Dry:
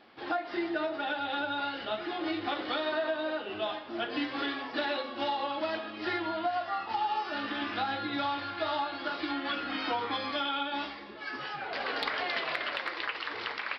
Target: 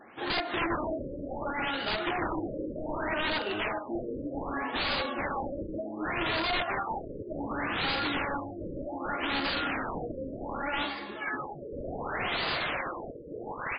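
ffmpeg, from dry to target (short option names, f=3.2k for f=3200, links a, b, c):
-af "aeval=exprs='(mod(28.2*val(0)+1,2)-1)/28.2':c=same,afftfilt=real='re*lt(b*sr/1024,580*pow(5000/580,0.5+0.5*sin(2*PI*0.66*pts/sr)))':imag='im*lt(b*sr/1024,580*pow(5000/580,0.5+0.5*sin(2*PI*0.66*pts/sr)))':win_size=1024:overlap=0.75,volume=6dB"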